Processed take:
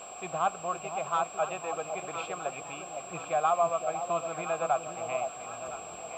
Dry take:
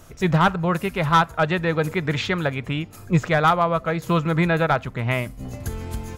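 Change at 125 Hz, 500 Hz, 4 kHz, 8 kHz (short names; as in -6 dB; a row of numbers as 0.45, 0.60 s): -26.5, -7.5, -15.5, +3.0 dB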